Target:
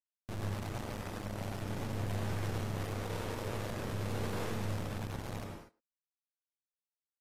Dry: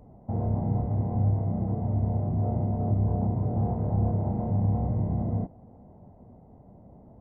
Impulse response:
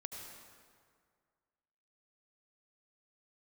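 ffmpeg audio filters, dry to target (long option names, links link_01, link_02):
-filter_complex "[0:a]highpass=frequency=110:poles=1,lowshelf=frequency=360:gain=3,acompressor=threshold=-30dB:ratio=20,asettb=1/sr,asplit=3[link_01][link_02][link_03];[link_01]atrim=end=2.434[link_04];[link_02]atrim=start=2.43:end=4.76,asetpts=PTS-STARTPTS,afade=type=in:duration=0.004:curve=qsin,afade=type=out:start_time=2.326:duration=0.004:curve=qsin,lowpass=frequency=460:width_type=q:width=5.3[link_05];[link_03]atrim=start=4.756[link_06];[link_04][link_05]acrossfade=duration=0.004:curve1=hsin:curve2=qsin[link_07];[link_07][link_06]acrossfade=duration=0.004:curve1=qsin:curve2=hsin,aphaser=in_gain=1:out_gain=1:delay=1.9:decay=0.58:speed=0.46:type=sinusoidal,asoftclip=type=tanh:threshold=-33.5dB,acrusher=bits=3:dc=4:mix=0:aa=0.000001,asplit=2[link_08][link_09];[link_09]adelay=110,highpass=300,lowpass=3400,asoftclip=type=hard:threshold=-37.5dB,volume=-17dB[link_10];[link_08][link_10]amix=inputs=2:normalize=0[link_11];[1:a]atrim=start_sample=2205,afade=type=out:start_time=0.3:duration=0.01,atrim=end_sample=13671[link_12];[link_11][link_12]afir=irnorm=-1:irlink=0" -ar 32000 -c:a aac -b:a 48k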